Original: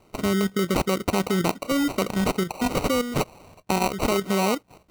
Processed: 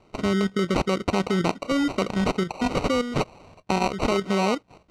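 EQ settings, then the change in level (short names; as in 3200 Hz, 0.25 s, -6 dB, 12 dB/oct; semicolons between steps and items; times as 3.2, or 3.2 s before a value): LPF 5500 Hz 12 dB/oct; 0.0 dB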